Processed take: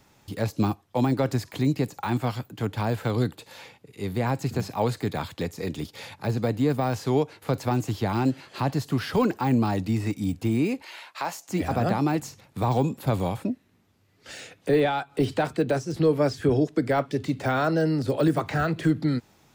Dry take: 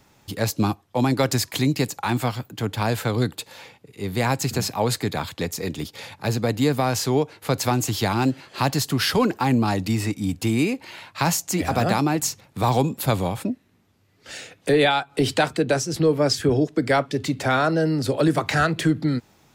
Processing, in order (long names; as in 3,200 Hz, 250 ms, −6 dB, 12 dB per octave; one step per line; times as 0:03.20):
0:10.82–0:11.49: high-pass filter 540 Hz 12 dB per octave
de-essing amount 95%
level −2 dB